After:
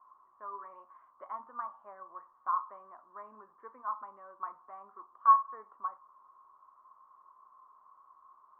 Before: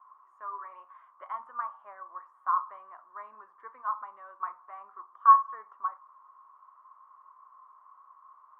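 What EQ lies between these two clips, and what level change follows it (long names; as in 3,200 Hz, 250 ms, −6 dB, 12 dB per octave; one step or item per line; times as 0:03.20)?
spectral tilt −6 dB per octave
−3.5 dB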